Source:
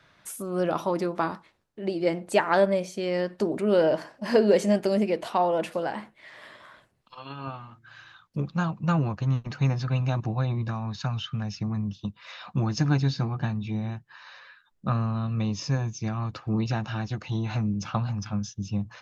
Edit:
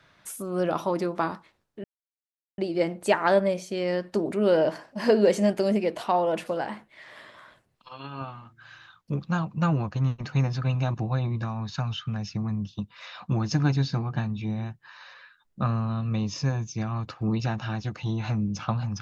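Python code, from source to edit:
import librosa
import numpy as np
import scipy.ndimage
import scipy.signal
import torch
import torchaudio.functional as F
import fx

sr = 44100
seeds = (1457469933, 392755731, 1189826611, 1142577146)

y = fx.edit(x, sr, fx.insert_silence(at_s=1.84, length_s=0.74), tone=tone)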